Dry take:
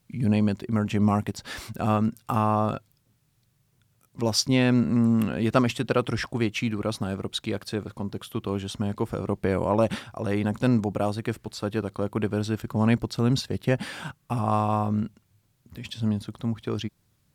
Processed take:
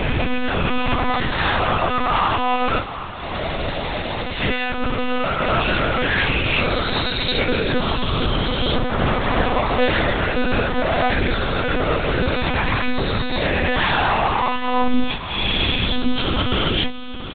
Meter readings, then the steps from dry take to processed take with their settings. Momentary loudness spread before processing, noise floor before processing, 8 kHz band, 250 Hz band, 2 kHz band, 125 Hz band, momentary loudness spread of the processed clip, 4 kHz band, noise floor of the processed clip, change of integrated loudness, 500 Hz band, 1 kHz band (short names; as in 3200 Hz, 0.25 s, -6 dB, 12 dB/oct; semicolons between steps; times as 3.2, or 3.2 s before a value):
10 LU, -68 dBFS, under -35 dB, +0.5 dB, +15.0 dB, +2.5 dB, 5 LU, +13.0 dB, -28 dBFS, +6.0 dB, +6.0 dB, +10.5 dB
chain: spectral swells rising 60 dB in 2.91 s; HPF 42 Hz 24 dB/oct; expander -29 dBFS; low shelf 380 Hz -12 dB; reverse; compressor 10:1, threshold -36 dBFS, peak gain reduction 21 dB; reverse; fuzz box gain 48 dB, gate -53 dBFS; chorus voices 2, 0.27 Hz, delay 20 ms, depth 2.1 ms; notches 50/100/150/200/250/300/350/400/450/500 Hz; doubler 14 ms -11 dB; diffused feedback echo 0.79 s, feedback 44%, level -12 dB; monotone LPC vocoder at 8 kHz 250 Hz